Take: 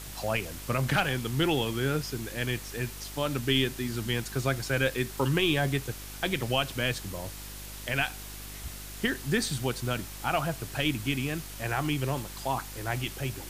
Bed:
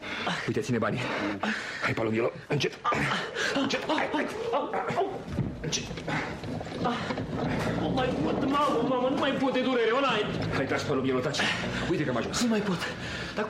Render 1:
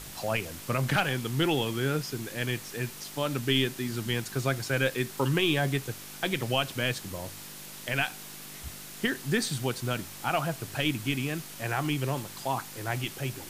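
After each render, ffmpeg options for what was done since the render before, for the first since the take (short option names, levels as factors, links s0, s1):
-af "bandreject=f=50:t=h:w=4,bandreject=f=100:t=h:w=4"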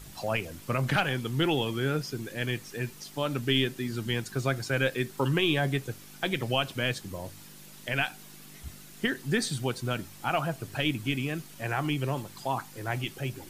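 -af "afftdn=nr=8:nf=-44"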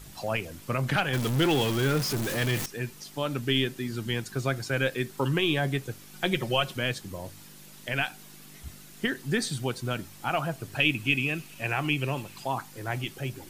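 -filter_complex "[0:a]asettb=1/sr,asplit=3[s0][s1][s2];[s0]atrim=end=1.134[s3];[s1]atrim=start=1.13:end=2.66,asetpts=PTS-STARTPTS,afade=t=in:d=0.004:c=qsin,afade=t=out:st=1.526:d=0.004:c=qsin,aeval=exprs='val(0)+0.5*0.0447*sgn(val(0))':c=same[s4];[s2]atrim=start=2.656[s5];[s3][s4]acrossfade=d=0.004:c1=hsin:c2=qsin[s6];[s6][s5]acrossfade=d=0.004:c1=qsin:c2=hsin,asettb=1/sr,asplit=3[s7][s8][s9];[s7]atrim=end=6.134[s10];[s8]atrim=start=6.13:end=6.77,asetpts=PTS-STARTPTS,afade=t=in:d=0.004:c=qsin,afade=t=out:st=0.636:d=0.004:c=qsin,aecho=1:1:5.5:0.65,atrim=end_sample=28224[s11];[s9]atrim=start=6.766[s12];[s10][s11]acrossfade=d=0.004:c1=hsin:c2=qsin[s13];[s13][s12]acrossfade=d=0.004:c1=qsin:c2=hsin,asettb=1/sr,asplit=3[s14][s15][s16];[s14]atrim=end=10.804[s17];[s15]atrim=start=10.8:end=12.44,asetpts=PTS-STARTPTS,afade=t=in:d=0.004:c=qsin,afade=t=out:st=1.636:d=0.004:c=qsin,equalizer=f=2600:w=4.7:g=12.5[s18];[s16]atrim=start=12.436[s19];[s17][s18]acrossfade=d=0.004:c1=hsin:c2=qsin[s20];[s20][s19]acrossfade=d=0.004:c1=qsin:c2=hsin"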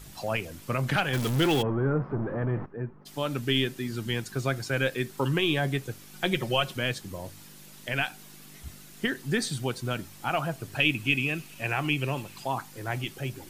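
-filter_complex "[0:a]asplit=3[s0][s1][s2];[s0]afade=t=out:st=1.61:d=0.02[s3];[s1]lowpass=f=1300:w=0.5412,lowpass=f=1300:w=1.3066,afade=t=in:st=1.61:d=0.02,afade=t=out:st=3.05:d=0.02[s4];[s2]afade=t=in:st=3.05:d=0.02[s5];[s3][s4][s5]amix=inputs=3:normalize=0"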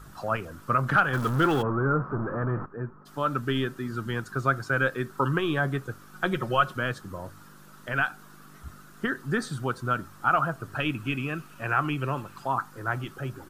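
-af "firequalizer=gain_entry='entry(810,0);entry(1300,13);entry(2100,-8)':delay=0.05:min_phase=1"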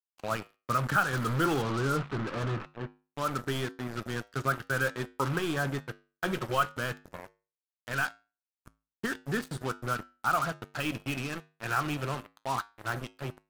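-af "acrusher=bits=4:mix=0:aa=0.5,flanger=delay=9:depth=1.3:regen=-82:speed=0.24:shape=triangular"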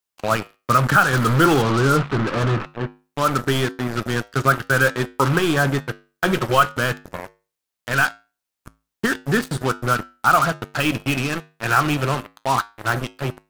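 -af "volume=3.98,alimiter=limit=0.708:level=0:latency=1"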